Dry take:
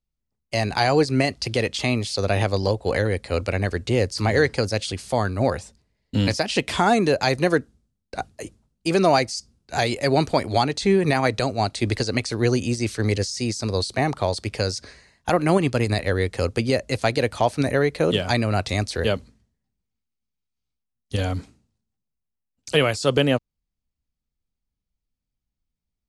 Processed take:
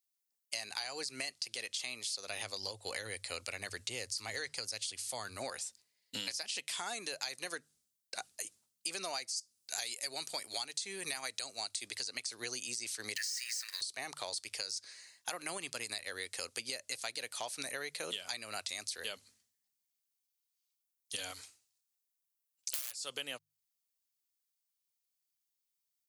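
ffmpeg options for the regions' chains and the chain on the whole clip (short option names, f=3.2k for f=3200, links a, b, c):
-filter_complex "[0:a]asettb=1/sr,asplit=3[a][b][c];[a]atrim=end=2.294[d];[b]atrim=start=2.29:end=5.37,asetpts=PTS-STARTPTS,afade=t=in:d=0.004:c=qsin,afade=t=out:st=3.076:d=0.004:c=qsin,equalizer=f=100:w=1.6:g=9.5,bandreject=f=1.6k:w=23[e];[c]atrim=start=5.366[f];[d][e]acrossfade=d=0.004:c1=hsin:c2=qsin[g];[g][f]acrossfade=d=0.004:c1=qsin:c2=hsin,asettb=1/sr,asplit=3[h][i][j];[h]atrim=end=9.364[k];[i]atrim=start=9.36:end=11.88,asetpts=PTS-STARTPTS,afade=t=in:d=0.004:c=qsin,afade=t=out:st=2.516:d=0.004:c=qsin,highpass=40,highshelf=f=5.1k:g=7[l];[j]atrim=start=11.876[m];[k][l]acrossfade=d=0.004:c1=hsin:c2=qsin[n];[n][m]acrossfade=d=0.004:c1=qsin:c2=hsin,asettb=1/sr,asplit=3[o][p][q];[o]atrim=end=13.164[r];[p]atrim=start=13.16:end=13.81,asetpts=PTS-STARTPTS,afade=t=in:d=0.004:c=qsin,afade=t=out:st=0.646:d=0.004:c=qsin,aeval=exprs='val(0)+0.5*0.0188*sgn(val(0))':c=same,highpass=f=1.8k:t=q:w=8.6,bandreject=f=3.5k:w=15[s];[q]atrim=start=13.806[t];[r][s]acrossfade=d=0.004:c1=hsin:c2=qsin[u];[u][t]acrossfade=d=0.004:c1=qsin:c2=hsin,asettb=1/sr,asplit=3[v][w][x];[v]atrim=end=21.314[y];[w]atrim=start=21.31:end=22.99,asetpts=PTS-STARTPTS,afade=t=in:d=0.004:c=qsin,afade=t=out:st=1.676:d=0.004:c=qsin,equalizer=f=210:t=o:w=1.2:g=-14,aeval=exprs='(mod(8.41*val(0)+1,2)-1)/8.41':c=same[z];[x]atrim=start=22.986[aa];[y][z]acrossfade=d=0.004:c1=hsin:c2=qsin[ab];[ab][aa]acrossfade=d=0.004:c1=qsin:c2=hsin,aderivative,bandreject=f=50:t=h:w=6,bandreject=f=100:t=h:w=6,bandreject=f=150:t=h:w=6,acompressor=threshold=-44dB:ratio=6,volume=7dB"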